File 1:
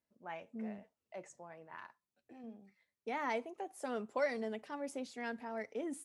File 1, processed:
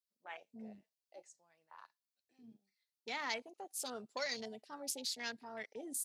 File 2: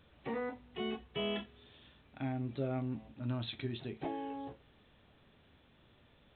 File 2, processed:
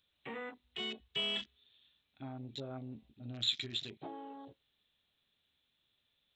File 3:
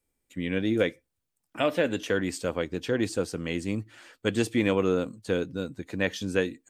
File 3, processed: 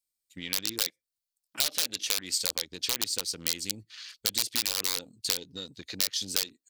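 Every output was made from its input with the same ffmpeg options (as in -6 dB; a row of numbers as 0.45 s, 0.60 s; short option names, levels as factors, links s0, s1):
-af "aeval=exprs='(mod(7.08*val(0)+1,2)-1)/7.08':c=same,equalizer=f=4400:t=o:w=0.91:g=11.5,acompressor=threshold=0.0282:ratio=6,crystalizer=i=8:c=0,afwtdn=0.0112,volume=0.398"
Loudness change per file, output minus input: -1.0 LU, +0.5 LU, -0.5 LU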